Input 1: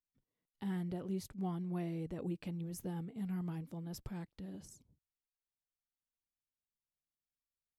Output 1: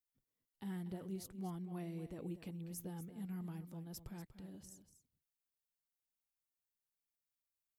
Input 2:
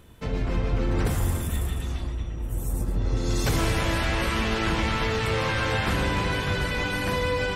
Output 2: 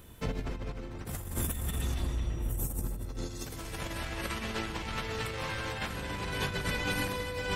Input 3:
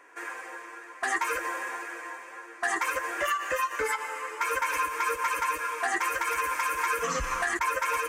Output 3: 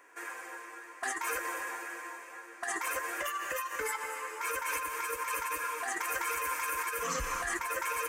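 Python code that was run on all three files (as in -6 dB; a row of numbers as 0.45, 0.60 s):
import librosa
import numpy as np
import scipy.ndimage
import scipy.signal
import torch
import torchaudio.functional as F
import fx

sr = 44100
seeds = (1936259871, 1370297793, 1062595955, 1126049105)

p1 = fx.high_shelf(x, sr, hz=8300.0, db=10.5)
p2 = fx.over_compress(p1, sr, threshold_db=-28.0, ratio=-0.5)
p3 = p2 + fx.echo_single(p2, sr, ms=240, db=-12.0, dry=0)
y = F.gain(torch.from_numpy(p3), -5.5).numpy()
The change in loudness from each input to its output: -5.0, -9.0, -5.5 LU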